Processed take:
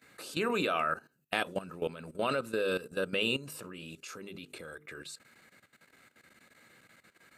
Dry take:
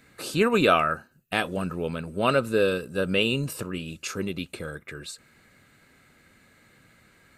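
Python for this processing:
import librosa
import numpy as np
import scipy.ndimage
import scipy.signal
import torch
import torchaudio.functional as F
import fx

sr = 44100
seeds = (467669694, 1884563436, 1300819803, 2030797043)

y = fx.highpass(x, sr, hz=260.0, slope=6)
y = fx.hum_notches(y, sr, base_hz=50, count=9)
y = fx.level_steps(y, sr, step_db=15)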